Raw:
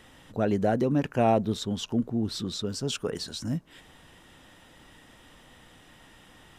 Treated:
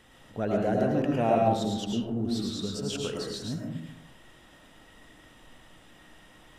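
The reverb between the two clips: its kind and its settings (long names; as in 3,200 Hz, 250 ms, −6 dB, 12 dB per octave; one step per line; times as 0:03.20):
comb and all-pass reverb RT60 0.87 s, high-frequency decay 0.4×, pre-delay 65 ms, DRR −1.5 dB
level −4.5 dB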